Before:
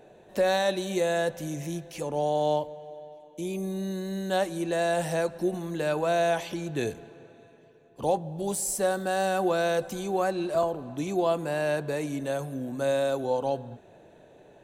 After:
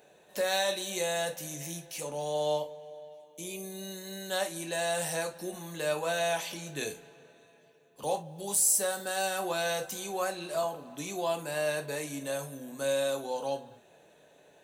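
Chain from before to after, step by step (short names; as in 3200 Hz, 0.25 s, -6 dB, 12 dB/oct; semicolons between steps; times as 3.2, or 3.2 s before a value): tilt +3 dB/oct; non-linear reverb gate 90 ms falling, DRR 4 dB; gain -5 dB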